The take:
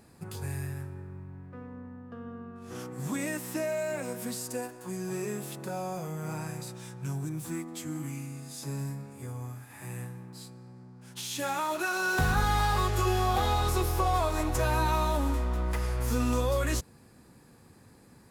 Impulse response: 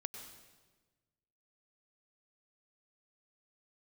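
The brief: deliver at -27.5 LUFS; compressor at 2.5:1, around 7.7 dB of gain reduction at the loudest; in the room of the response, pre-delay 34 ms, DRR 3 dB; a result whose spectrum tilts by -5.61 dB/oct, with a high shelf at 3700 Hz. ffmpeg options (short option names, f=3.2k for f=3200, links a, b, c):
-filter_complex "[0:a]highshelf=f=3.7k:g=-6,acompressor=threshold=-34dB:ratio=2.5,asplit=2[a][b];[1:a]atrim=start_sample=2205,adelay=34[c];[b][c]afir=irnorm=-1:irlink=0,volume=-1dB[d];[a][d]amix=inputs=2:normalize=0,volume=8dB"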